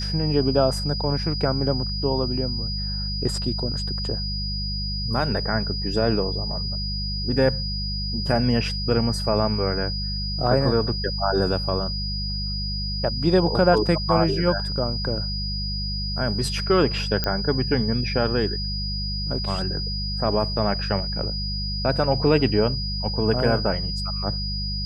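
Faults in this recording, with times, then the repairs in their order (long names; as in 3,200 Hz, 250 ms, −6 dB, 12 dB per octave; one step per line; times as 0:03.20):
mains hum 50 Hz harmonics 4 −29 dBFS
whistle 4,900 Hz −29 dBFS
0:17.24: click −9 dBFS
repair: click removal
notch filter 4,900 Hz, Q 30
hum removal 50 Hz, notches 4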